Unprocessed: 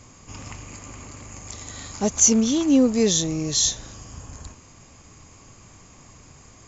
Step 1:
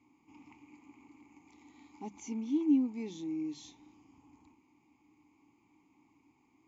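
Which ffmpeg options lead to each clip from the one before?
ffmpeg -i in.wav -filter_complex "[0:a]asplit=3[link_01][link_02][link_03];[link_01]bandpass=frequency=300:width_type=q:width=8,volume=0dB[link_04];[link_02]bandpass=frequency=870:width_type=q:width=8,volume=-6dB[link_05];[link_03]bandpass=frequency=2240:width_type=q:width=8,volume=-9dB[link_06];[link_04][link_05][link_06]amix=inputs=3:normalize=0,bandreject=frequency=50:width_type=h:width=6,bandreject=frequency=100:width_type=h:width=6,bandreject=frequency=150:width_type=h:width=6,bandreject=frequency=200:width_type=h:width=6,volume=-5dB" out.wav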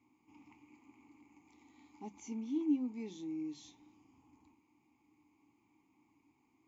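ffmpeg -i in.wav -af "flanger=delay=8.4:depth=1.4:regen=-71:speed=1.2:shape=triangular" out.wav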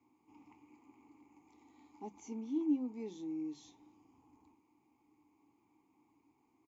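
ffmpeg -i in.wav -filter_complex "[0:a]firequalizer=gain_entry='entry(240,0);entry(430,6);entry(2200,-3);entry(5100,-1)':delay=0.05:min_phase=1,acrossover=split=150|2900[link_01][link_02][link_03];[link_01]aeval=exprs='clip(val(0),-1,0.00316)':channel_layout=same[link_04];[link_04][link_02][link_03]amix=inputs=3:normalize=0,volume=-2dB" out.wav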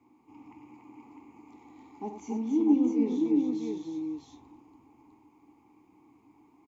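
ffmpeg -i in.wav -filter_complex "[0:a]highshelf=frequency=3400:gain=-8.5,asplit=2[link_01][link_02];[link_02]aecho=0:1:48|94|284|464|653:0.282|0.376|0.596|0.126|0.668[link_03];[link_01][link_03]amix=inputs=2:normalize=0,volume=9dB" out.wav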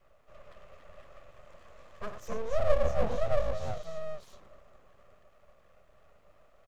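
ffmpeg -i in.wav -af "aeval=exprs='abs(val(0))':channel_layout=same,volume=1.5dB" out.wav

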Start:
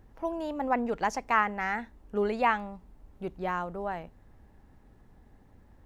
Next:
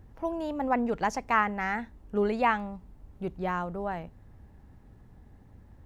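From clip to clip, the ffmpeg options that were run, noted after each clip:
ffmpeg -i in.wav -af "equalizer=frequency=100:width=0.66:gain=7.5" out.wav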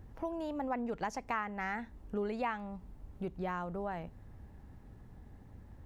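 ffmpeg -i in.wav -af "acompressor=threshold=-37dB:ratio=2.5" out.wav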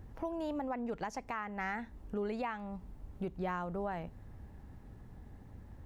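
ffmpeg -i in.wav -af "alimiter=level_in=5dB:limit=-24dB:level=0:latency=1:release=268,volume=-5dB,volume=1.5dB" out.wav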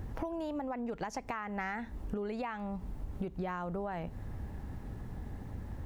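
ffmpeg -i in.wav -af "acompressor=threshold=-43dB:ratio=12,volume=9.5dB" out.wav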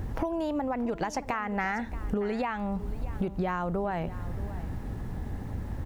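ffmpeg -i in.wav -af "aecho=1:1:629:0.158,volume=7dB" out.wav

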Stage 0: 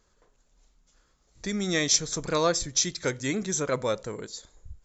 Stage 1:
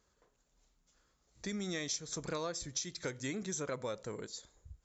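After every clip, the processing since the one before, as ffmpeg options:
ffmpeg -i in.wav -af "highpass=44,acompressor=threshold=-29dB:ratio=6,volume=-6dB" out.wav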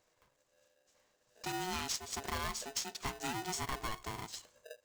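ffmpeg -i in.wav -af "aeval=exprs='val(0)*sgn(sin(2*PI*550*n/s))':channel_layout=same" out.wav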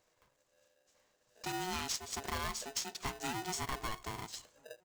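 ffmpeg -i in.wav -filter_complex "[0:a]asplit=2[link_01][link_02];[link_02]adelay=1341,volume=-29dB,highshelf=frequency=4000:gain=-30.2[link_03];[link_01][link_03]amix=inputs=2:normalize=0" out.wav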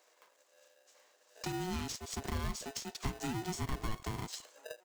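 ffmpeg -i in.wav -filter_complex "[0:a]acrossover=split=330[link_01][link_02];[link_01]aeval=exprs='val(0)*gte(abs(val(0)),0.00126)':channel_layout=same[link_03];[link_02]acompressor=threshold=-48dB:ratio=6[link_04];[link_03][link_04]amix=inputs=2:normalize=0,volume=7.5dB" out.wav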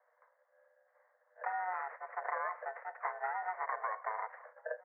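ffmpeg -i in.wav -af "agate=range=-10dB:threshold=-57dB:ratio=16:detection=peak,asuperpass=centerf=990:order=20:qfactor=0.65,volume=8dB" out.wav

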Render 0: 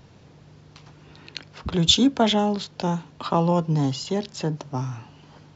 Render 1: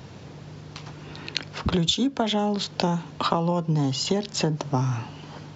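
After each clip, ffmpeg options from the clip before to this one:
ffmpeg -i in.wav -af "highpass=70,acompressor=threshold=-28dB:ratio=16,volume=8.5dB" out.wav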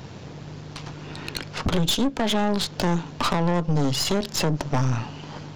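ffmpeg -i in.wav -af "aeval=exprs='(tanh(20*val(0)+0.75)-tanh(0.75))/20':channel_layout=same,volume=7.5dB" out.wav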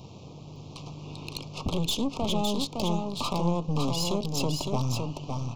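ffmpeg -i in.wav -filter_complex "[0:a]asuperstop=centerf=1700:order=8:qfactor=1.4,asplit=2[link_01][link_02];[link_02]aecho=0:1:560:0.596[link_03];[link_01][link_03]amix=inputs=2:normalize=0,volume=-6dB" out.wav

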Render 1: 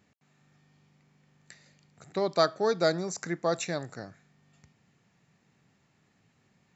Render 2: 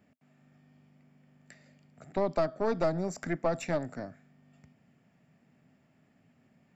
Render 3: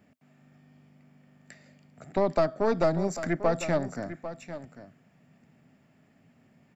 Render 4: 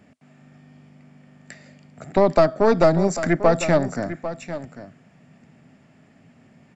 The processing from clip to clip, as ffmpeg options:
ffmpeg -i in.wav -filter_complex "[0:a]equalizer=frequency=160:width_type=o:width=0.33:gain=4,equalizer=frequency=250:width_type=o:width=0.33:gain=11,equalizer=frequency=630:width_type=o:width=0.33:gain=9,equalizer=frequency=1000:width_type=o:width=0.33:gain=-3,equalizer=frequency=4000:width_type=o:width=0.33:gain=-10,equalizer=frequency=6300:width_type=o:width=0.33:gain=-11,acrossover=split=290[link_01][link_02];[link_02]acompressor=threshold=-24dB:ratio=10[link_03];[link_01][link_03]amix=inputs=2:normalize=0,aeval=exprs='(tanh(11.2*val(0)+0.6)-tanh(0.6))/11.2':channel_layout=same,volume=1.5dB" out.wav
ffmpeg -i in.wav -af "aecho=1:1:797:0.237,volume=4dB" out.wav
ffmpeg -i in.wav -af "aresample=22050,aresample=44100,volume=8.5dB" out.wav

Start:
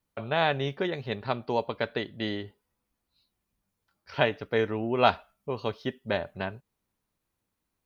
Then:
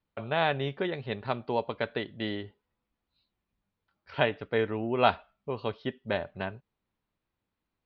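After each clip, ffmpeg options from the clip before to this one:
ffmpeg -i in.wav -af "lowpass=frequency=4100:width=0.5412,lowpass=frequency=4100:width=1.3066,volume=-1.5dB" out.wav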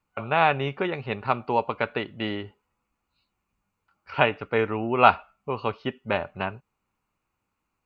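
ffmpeg -i in.wav -af "superequalizer=9b=1.78:10b=2.24:12b=1.78:13b=0.562:15b=1.78,volume=3.5dB" out.wav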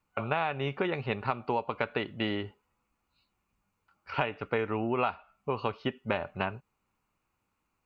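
ffmpeg -i in.wav -af "acompressor=threshold=-25dB:ratio=16" out.wav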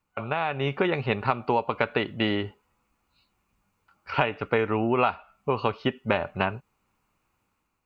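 ffmpeg -i in.wav -af "dynaudnorm=framelen=140:gausssize=7:maxgain=6dB" out.wav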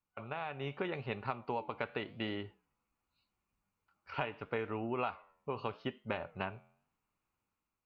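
ffmpeg -i in.wav -af "flanger=delay=7:depth=4.7:regen=-89:speed=0.83:shape=sinusoidal,volume=-8.5dB" out.wav

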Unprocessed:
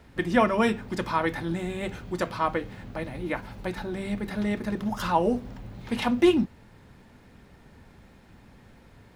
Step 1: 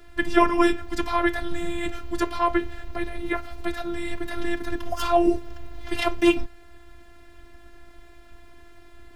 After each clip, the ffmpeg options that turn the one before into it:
ffmpeg -i in.wav -af "lowshelf=frequency=140:gain=5,afreqshift=-110,afftfilt=real='hypot(re,im)*cos(PI*b)':imag='0':win_size=512:overlap=0.75,volume=7.5dB" out.wav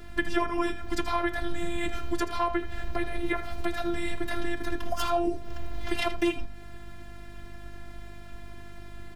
ffmpeg -i in.wav -af "acompressor=threshold=-27dB:ratio=5,aeval=exprs='val(0)+0.00251*(sin(2*PI*50*n/s)+sin(2*PI*2*50*n/s)/2+sin(2*PI*3*50*n/s)/3+sin(2*PI*4*50*n/s)/4+sin(2*PI*5*50*n/s)/5)':channel_layout=same,aecho=1:1:80:0.224,volume=3.5dB" out.wav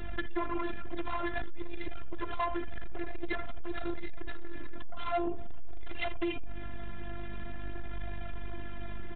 ffmpeg -i in.wav -af "acompressor=threshold=-28dB:ratio=8,flanger=delay=1:depth=5:regen=64:speed=0.49:shape=triangular,aresample=8000,asoftclip=type=tanh:threshold=-36dB,aresample=44100,volume=10.5dB" out.wav

